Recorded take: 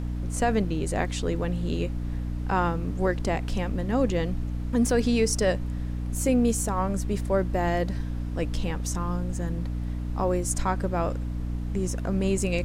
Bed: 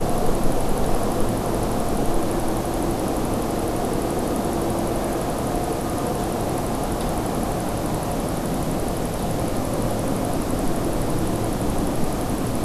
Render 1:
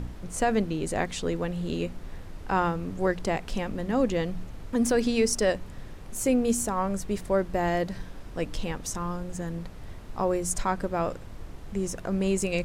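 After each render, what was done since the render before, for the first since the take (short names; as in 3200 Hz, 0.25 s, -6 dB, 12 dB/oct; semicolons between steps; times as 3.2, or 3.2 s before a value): de-hum 60 Hz, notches 5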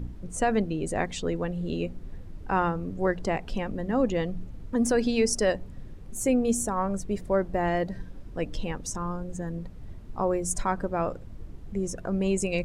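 denoiser 11 dB, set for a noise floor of -42 dBFS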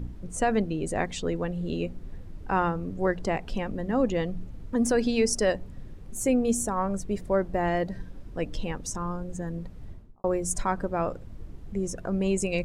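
9.84–10.24 studio fade out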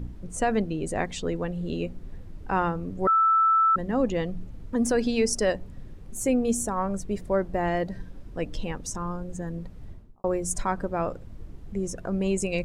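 3.07–3.76 bleep 1320 Hz -17 dBFS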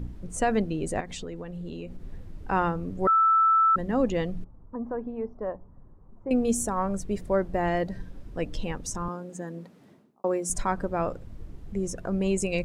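1–2.04 compressor, threshold -33 dBFS; 4.44–6.31 ladder low-pass 1200 Hz, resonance 55%; 9.08–10.5 HPF 190 Hz 24 dB/oct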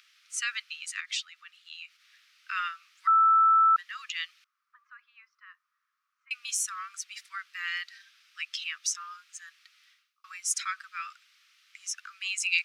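steep high-pass 1200 Hz 96 dB/oct; band shelf 3600 Hz +9.5 dB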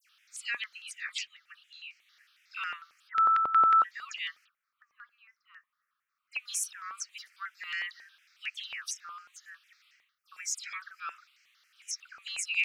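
dispersion lows, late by 92 ms, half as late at 2700 Hz; step phaser 11 Hz 980–3600 Hz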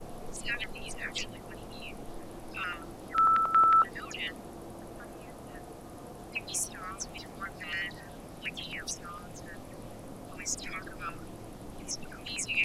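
add bed -22 dB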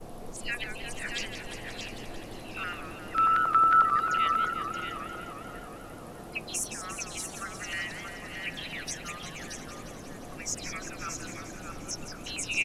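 on a send: echo 0.626 s -6 dB; on the sum: warbling echo 0.176 s, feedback 74%, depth 180 cents, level -9 dB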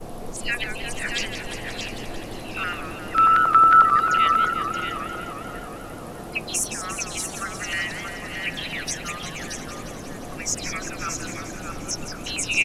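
gain +7.5 dB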